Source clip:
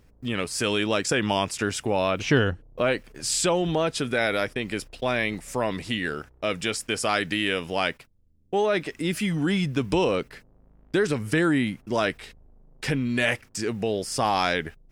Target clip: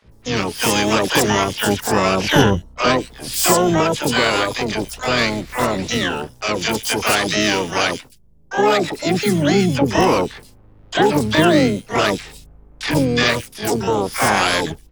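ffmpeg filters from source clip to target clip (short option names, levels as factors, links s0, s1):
-filter_complex "[0:a]acrossover=split=690|4200[s0][s1][s2];[s0]adelay=50[s3];[s2]adelay=120[s4];[s3][s1][s4]amix=inputs=3:normalize=0,apsyclip=4.22,asplit=4[s5][s6][s7][s8];[s6]asetrate=29433,aresample=44100,atempo=1.49831,volume=0.316[s9];[s7]asetrate=52444,aresample=44100,atempo=0.840896,volume=0.251[s10];[s8]asetrate=88200,aresample=44100,atempo=0.5,volume=0.794[s11];[s5][s9][s10][s11]amix=inputs=4:normalize=0,volume=0.501"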